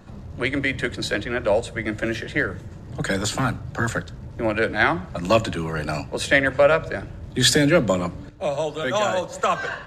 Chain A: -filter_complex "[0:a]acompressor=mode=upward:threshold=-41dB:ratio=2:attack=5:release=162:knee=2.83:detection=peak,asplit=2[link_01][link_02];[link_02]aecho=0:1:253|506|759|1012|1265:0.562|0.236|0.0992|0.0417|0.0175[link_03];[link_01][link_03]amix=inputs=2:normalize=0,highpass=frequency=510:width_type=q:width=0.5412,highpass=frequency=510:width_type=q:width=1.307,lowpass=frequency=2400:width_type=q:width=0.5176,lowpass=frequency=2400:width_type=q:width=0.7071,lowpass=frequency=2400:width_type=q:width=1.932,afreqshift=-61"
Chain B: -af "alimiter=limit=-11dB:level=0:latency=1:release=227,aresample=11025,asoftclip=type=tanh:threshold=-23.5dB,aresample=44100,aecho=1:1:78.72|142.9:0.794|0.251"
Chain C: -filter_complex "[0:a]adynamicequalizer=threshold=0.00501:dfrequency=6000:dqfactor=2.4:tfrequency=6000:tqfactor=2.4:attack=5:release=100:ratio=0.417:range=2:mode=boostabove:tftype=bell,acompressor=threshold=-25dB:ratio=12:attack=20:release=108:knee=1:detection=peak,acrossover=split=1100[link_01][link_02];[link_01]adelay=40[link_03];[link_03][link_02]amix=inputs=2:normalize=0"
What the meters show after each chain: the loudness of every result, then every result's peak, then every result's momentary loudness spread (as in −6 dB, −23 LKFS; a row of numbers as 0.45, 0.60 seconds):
−24.0, −27.5, −28.5 LKFS; −5.0, −16.0, −12.0 dBFS; 9, 6, 5 LU